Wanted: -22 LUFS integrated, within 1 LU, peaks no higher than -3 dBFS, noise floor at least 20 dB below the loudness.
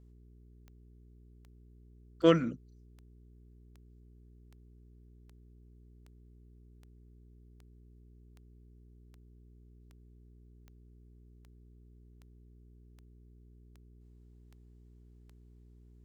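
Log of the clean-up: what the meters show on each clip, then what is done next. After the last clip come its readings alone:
clicks 20; hum 60 Hz; harmonics up to 420 Hz; hum level -55 dBFS; loudness -28.5 LUFS; peak -11.0 dBFS; loudness target -22.0 LUFS
-> de-click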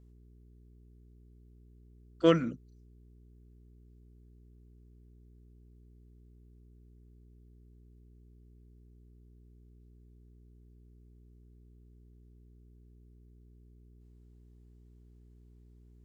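clicks 0; hum 60 Hz; harmonics up to 420 Hz; hum level -55 dBFS
-> de-hum 60 Hz, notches 7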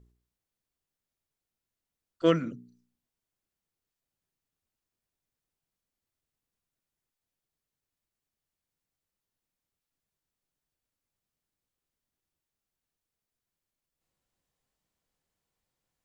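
hum none; loudness -27.5 LUFS; peak -11.0 dBFS; loudness target -22.0 LUFS
-> gain +5.5 dB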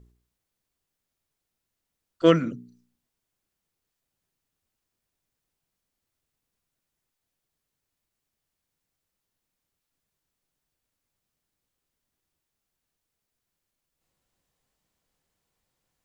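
loudness -22.5 LUFS; peak -5.5 dBFS; noise floor -84 dBFS

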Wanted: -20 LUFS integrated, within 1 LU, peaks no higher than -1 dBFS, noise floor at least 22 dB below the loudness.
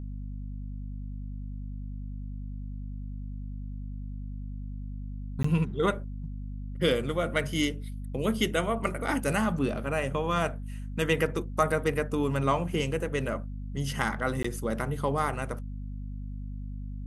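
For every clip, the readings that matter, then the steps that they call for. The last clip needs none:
dropouts 2; longest dropout 14 ms; hum 50 Hz; harmonics up to 250 Hz; hum level -34 dBFS; loudness -31.5 LUFS; peak -9.5 dBFS; loudness target -20.0 LUFS
-> interpolate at 5.43/14.43, 14 ms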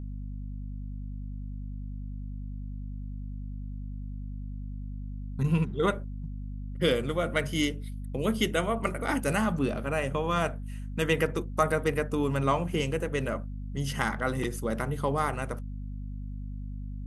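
dropouts 0; hum 50 Hz; harmonics up to 250 Hz; hum level -34 dBFS
-> notches 50/100/150/200/250 Hz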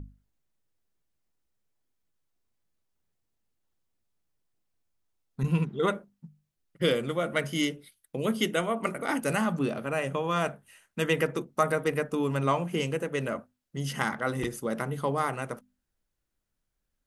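hum none; loudness -29.5 LUFS; peak -9.0 dBFS; loudness target -20.0 LUFS
-> gain +9.5 dB; limiter -1 dBFS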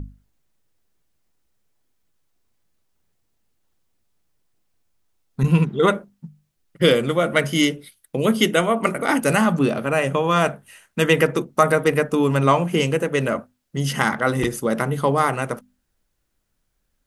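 loudness -20.0 LUFS; peak -1.0 dBFS; noise floor -72 dBFS

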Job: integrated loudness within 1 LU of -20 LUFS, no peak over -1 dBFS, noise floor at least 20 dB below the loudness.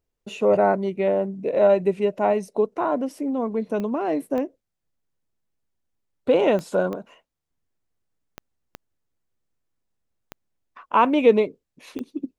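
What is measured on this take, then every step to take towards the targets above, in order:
clicks 8; loudness -22.0 LUFS; peak -5.0 dBFS; loudness target -20.0 LUFS
-> de-click; gain +2 dB

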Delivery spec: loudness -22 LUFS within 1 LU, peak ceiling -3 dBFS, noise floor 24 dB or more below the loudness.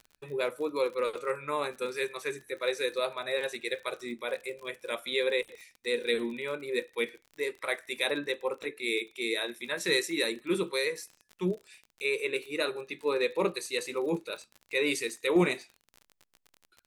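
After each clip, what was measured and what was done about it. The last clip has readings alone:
ticks 38/s; loudness -32.0 LUFS; peak -13.5 dBFS; loudness target -22.0 LUFS
-> de-click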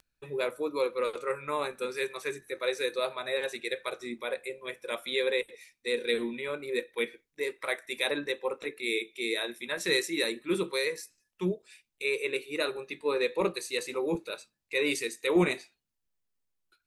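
ticks 0.059/s; loudness -32.0 LUFS; peak -13.5 dBFS; loudness target -22.0 LUFS
-> gain +10 dB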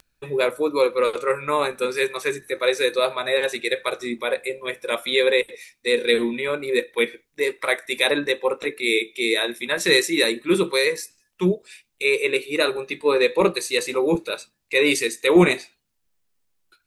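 loudness -22.0 LUFS; peak -3.5 dBFS; noise floor -72 dBFS

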